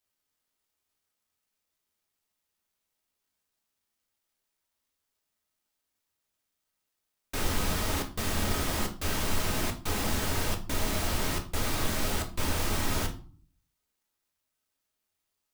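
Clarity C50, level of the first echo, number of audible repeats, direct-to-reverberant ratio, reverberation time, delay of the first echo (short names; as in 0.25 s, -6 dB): 12.5 dB, none, none, 2.5 dB, 0.45 s, none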